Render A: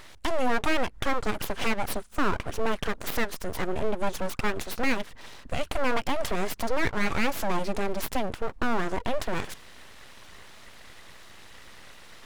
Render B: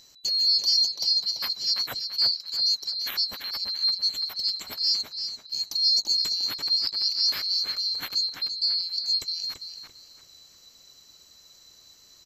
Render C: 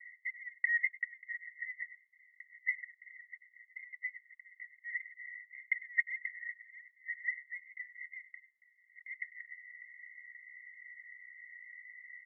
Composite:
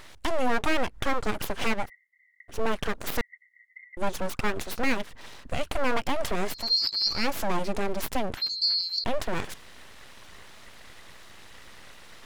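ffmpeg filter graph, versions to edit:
-filter_complex "[2:a]asplit=2[a][b];[1:a]asplit=2[c][d];[0:a]asplit=5[e][f][g][h][i];[e]atrim=end=1.9[j];[a]atrim=start=1.8:end=2.58[k];[f]atrim=start=2.48:end=3.212[l];[b]atrim=start=3.208:end=3.972[m];[g]atrim=start=3.968:end=6.73[n];[c]atrim=start=6.49:end=7.29[o];[h]atrim=start=7.05:end=8.372[p];[d]atrim=start=8.368:end=9.042[q];[i]atrim=start=9.038[r];[j][k]acrossfade=d=0.1:c1=tri:c2=tri[s];[s][l]acrossfade=d=0.1:c1=tri:c2=tri[t];[t][m]acrossfade=d=0.004:c1=hsin:c2=hsin[u];[u][n]acrossfade=d=0.004:c1=hsin:c2=hsin[v];[v][o]acrossfade=d=0.24:c1=tri:c2=tri[w];[w][p]acrossfade=d=0.24:c1=tri:c2=tri[x];[x][q]acrossfade=d=0.004:c1=hsin:c2=hsin[y];[y][r]acrossfade=d=0.004:c1=hsin:c2=hsin"

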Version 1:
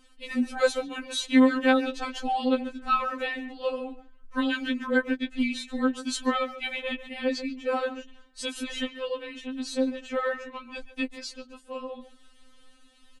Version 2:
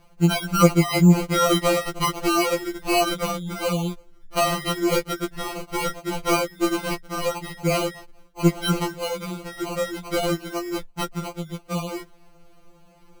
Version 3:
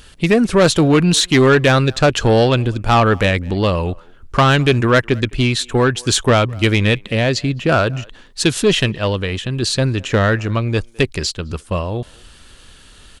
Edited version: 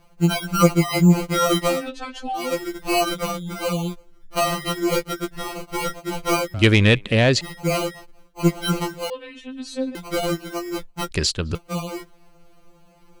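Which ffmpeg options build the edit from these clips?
-filter_complex "[0:a]asplit=2[a][b];[2:a]asplit=2[c][d];[1:a]asplit=5[e][f][g][h][i];[e]atrim=end=1.91[j];[a]atrim=start=1.67:end=2.57[k];[f]atrim=start=2.33:end=6.542[l];[c]atrim=start=6.538:end=7.412[m];[g]atrim=start=7.408:end=9.102[n];[b]atrim=start=9.098:end=9.952[o];[h]atrim=start=9.948:end=11.112[p];[d]atrim=start=11.108:end=11.552[q];[i]atrim=start=11.548[r];[j][k]acrossfade=d=0.24:c1=tri:c2=tri[s];[s][l]acrossfade=d=0.24:c1=tri:c2=tri[t];[t][m]acrossfade=d=0.004:c1=hsin:c2=hsin[u];[u][n]acrossfade=d=0.004:c1=hsin:c2=hsin[v];[v][o]acrossfade=d=0.004:c1=hsin:c2=hsin[w];[w][p]acrossfade=d=0.004:c1=hsin:c2=hsin[x];[x][q]acrossfade=d=0.004:c1=hsin:c2=hsin[y];[y][r]acrossfade=d=0.004:c1=hsin:c2=hsin"

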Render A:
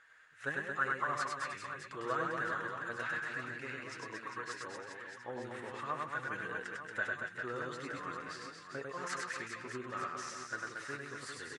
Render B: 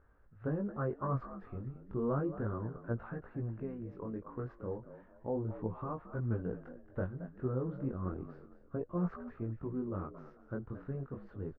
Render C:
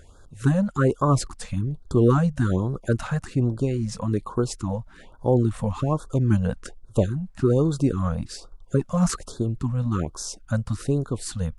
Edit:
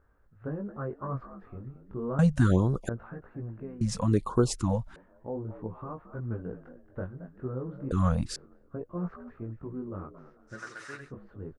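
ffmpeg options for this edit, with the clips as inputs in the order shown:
-filter_complex "[2:a]asplit=3[a][b][c];[1:a]asplit=5[d][e][f][g][h];[d]atrim=end=2.192[i];[a]atrim=start=2.188:end=2.892[j];[e]atrim=start=2.888:end=3.812[k];[b]atrim=start=3.808:end=4.962[l];[f]atrim=start=4.958:end=7.912[m];[c]atrim=start=7.908:end=8.362[n];[g]atrim=start=8.358:end=10.63[o];[0:a]atrim=start=10.47:end=11.13[p];[h]atrim=start=10.97[q];[i][j]acrossfade=d=0.004:c1=hsin:c2=hsin[r];[r][k]acrossfade=d=0.004:c1=hsin:c2=hsin[s];[s][l]acrossfade=d=0.004:c1=hsin:c2=hsin[t];[t][m]acrossfade=d=0.004:c1=hsin:c2=hsin[u];[u][n]acrossfade=d=0.004:c1=hsin:c2=hsin[v];[v][o]acrossfade=d=0.004:c1=hsin:c2=hsin[w];[w][p]acrossfade=d=0.16:c1=tri:c2=tri[x];[x][q]acrossfade=d=0.16:c1=tri:c2=tri"

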